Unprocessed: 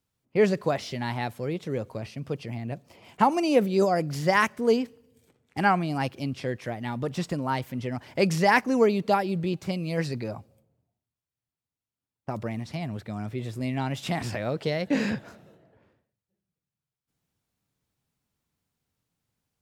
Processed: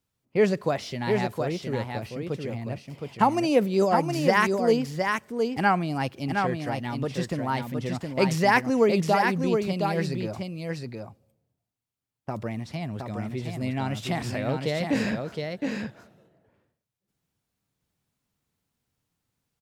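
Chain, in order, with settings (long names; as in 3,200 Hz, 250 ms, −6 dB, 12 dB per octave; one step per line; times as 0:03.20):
single-tap delay 716 ms −4.5 dB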